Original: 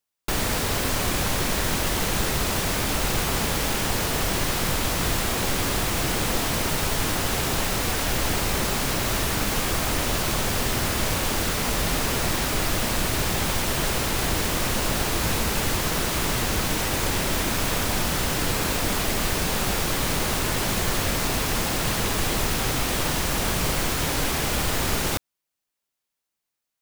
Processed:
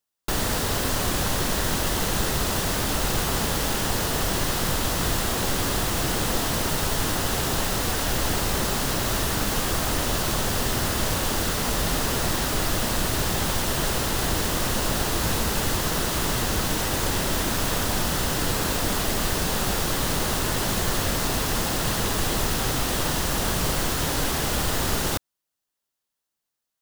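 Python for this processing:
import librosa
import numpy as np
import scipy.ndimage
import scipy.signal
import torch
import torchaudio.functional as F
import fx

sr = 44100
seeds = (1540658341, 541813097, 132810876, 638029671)

y = fx.peak_eq(x, sr, hz=2300.0, db=-6.0, octaves=0.3)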